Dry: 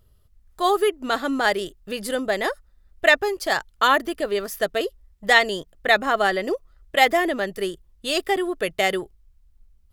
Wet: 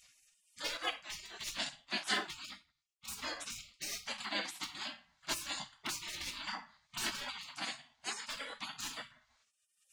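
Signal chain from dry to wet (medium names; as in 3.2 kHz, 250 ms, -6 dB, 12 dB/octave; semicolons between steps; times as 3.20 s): gate with hold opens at -53 dBFS; cabinet simulation 450–5700 Hz, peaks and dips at 510 Hz +7 dB, 800 Hz +3 dB, 2.8 kHz -10 dB, 5.4 kHz -6 dB; hard clipper -13.5 dBFS, distortion -11 dB; treble shelf 3.1 kHz +3.5 dB; peak limiter -16.5 dBFS, peak gain reduction 6.5 dB; compression 5:1, threshold -27 dBFS, peak gain reduction 7 dB; comb of notches 610 Hz; simulated room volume 37 m³, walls mixed, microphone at 0.55 m; spectral gate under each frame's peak -30 dB weak; upward compressor, threshold -58 dBFS; 0.77–3.09 s: three bands expanded up and down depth 70%; trim +8.5 dB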